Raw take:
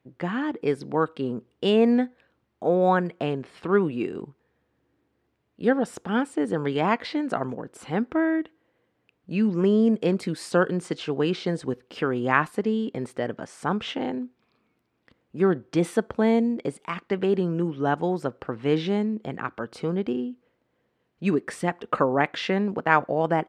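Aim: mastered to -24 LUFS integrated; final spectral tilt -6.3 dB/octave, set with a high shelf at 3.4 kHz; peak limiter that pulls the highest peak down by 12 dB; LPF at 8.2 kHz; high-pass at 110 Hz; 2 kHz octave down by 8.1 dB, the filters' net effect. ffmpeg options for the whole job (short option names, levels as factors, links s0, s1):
-af "highpass=110,lowpass=8200,equalizer=f=2000:t=o:g=-9,highshelf=f=3400:g=-8.5,volume=2,alimiter=limit=0.224:level=0:latency=1"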